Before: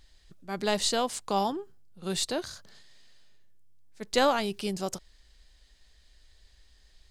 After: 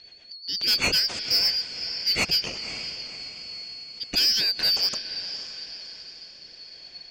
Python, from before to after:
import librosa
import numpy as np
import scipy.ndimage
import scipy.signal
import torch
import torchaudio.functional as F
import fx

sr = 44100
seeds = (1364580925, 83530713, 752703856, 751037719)

p1 = fx.band_shuffle(x, sr, order='4321')
p2 = scipy.signal.sosfilt(scipy.signal.butter(4, 5400.0, 'lowpass', fs=sr, output='sos'), p1)
p3 = fx.high_shelf(p2, sr, hz=2900.0, db=3.5)
p4 = fx.rider(p3, sr, range_db=10, speed_s=0.5)
p5 = p3 + (p4 * librosa.db_to_amplitude(-0.5))
p6 = fx.rotary_switch(p5, sr, hz=8.0, then_hz=0.9, switch_at_s=2.68)
p7 = p6 + fx.echo_diffused(p6, sr, ms=530, feedback_pct=47, wet_db=-12.5, dry=0)
p8 = 10.0 ** (-19.0 / 20.0) * np.tanh(p7 / 10.0 ** (-19.0 / 20.0))
y = p8 * librosa.db_to_amplitude(3.5)